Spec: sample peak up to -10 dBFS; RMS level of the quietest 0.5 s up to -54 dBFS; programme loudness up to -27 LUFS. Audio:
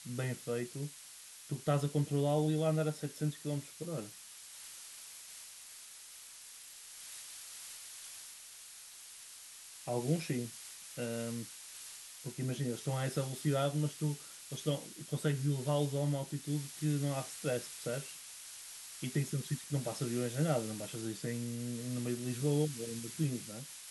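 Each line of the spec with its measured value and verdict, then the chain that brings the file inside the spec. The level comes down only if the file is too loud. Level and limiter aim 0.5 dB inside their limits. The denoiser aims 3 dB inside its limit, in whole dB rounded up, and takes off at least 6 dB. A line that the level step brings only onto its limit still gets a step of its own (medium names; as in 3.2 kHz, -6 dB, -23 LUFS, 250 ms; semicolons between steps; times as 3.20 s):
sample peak -19.0 dBFS: pass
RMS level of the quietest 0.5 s -53 dBFS: fail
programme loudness -37.5 LUFS: pass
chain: noise reduction 6 dB, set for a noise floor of -53 dBFS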